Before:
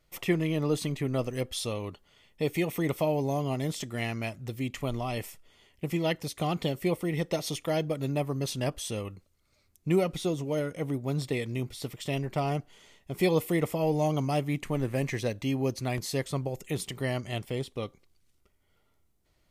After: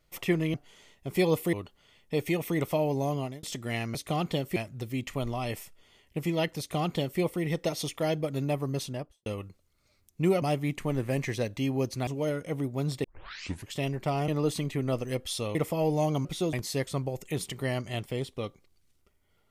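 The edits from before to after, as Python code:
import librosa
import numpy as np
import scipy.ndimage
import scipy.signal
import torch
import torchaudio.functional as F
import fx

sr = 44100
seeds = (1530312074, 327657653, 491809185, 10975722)

y = fx.studio_fade_out(x, sr, start_s=8.39, length_s=0.54)
y = fx.edit(y, sr, fx.swap(start_s=0.54, length_s=1.27, other_s=12.58, other_length_s=0.99),
    fx.fade_out_span(start_s=3.44, length_s=0.27),
    fx.duplicate(start_s=6.26, length_s=0.61, to_s=4.23),
    fx.swap(start_s=10.09, length_s=0.28, other_s=14.27, other_length_s=1.65),
    fx.tape_start(start_s=11.34, length_s=0.71), tone=tone)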